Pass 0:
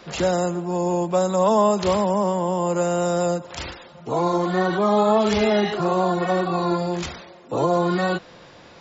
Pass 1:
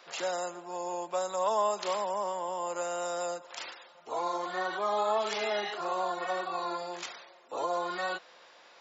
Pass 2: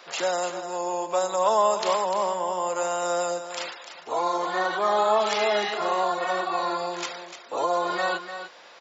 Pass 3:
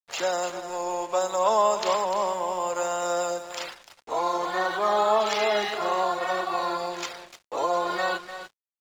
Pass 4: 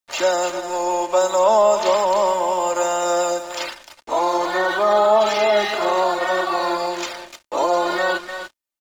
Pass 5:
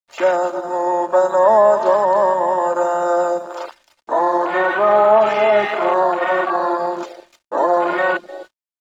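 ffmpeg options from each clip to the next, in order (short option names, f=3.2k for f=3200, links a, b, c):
-af "highpass=660,volume=-7dB"
-af "aecho=1:1:298:0.316,volume=7dB"
-af "agate=range=-33dB:threshold=-39dB:ratio=3:detection=peak,aeval=exprs='sgn(val(0))*max(abs(val(0))-0.00531,0)':c=same"
-filter_complex "[0:a]aecho=1:1:3.3:0.45,acrossover=split=800[a][b];[b]alimiter=limit=-23dB:level=0:latency=1:release=17[c];[a][c]amix=inputs=2:normalize=0,volume=7dB"
-af "afwtdn=0.0562,volume=3dB"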